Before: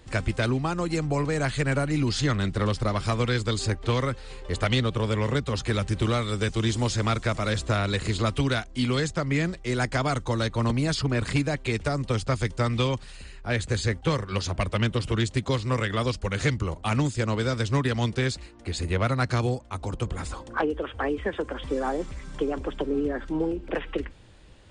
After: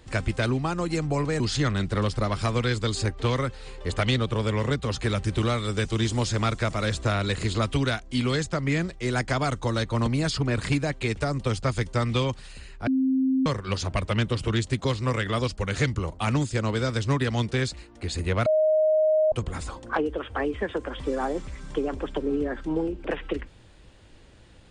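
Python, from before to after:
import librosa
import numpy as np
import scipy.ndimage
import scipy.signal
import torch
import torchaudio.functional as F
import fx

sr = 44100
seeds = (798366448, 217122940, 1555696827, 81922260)

y = fx.edit(x, sr, fx.cut(start_s=1.4, length_s=0.64),
    fx.bleep(start_s=13.51, length_s=0.59, hz=263.0, db=-19.5),
    fx.bleep(start_s=19.1, length_s=0.86, hz=623.0, db=-17.5), tone=tone)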